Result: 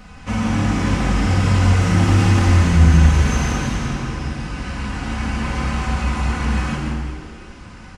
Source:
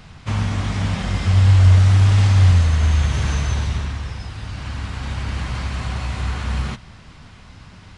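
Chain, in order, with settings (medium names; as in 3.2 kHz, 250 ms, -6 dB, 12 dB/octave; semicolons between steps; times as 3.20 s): self-modulated delay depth 0.096 ms; peaking EQ 3.7 kHz -7 dB 0.57 oct; comb 4 ms, depth 82%; frequency-shifting echo 171 ms, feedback 37%, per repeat +81 Hz, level -7 dB; plate-style reverb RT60 1.5 s, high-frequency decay 0.85×, DRR -1 dB; trim -1 dB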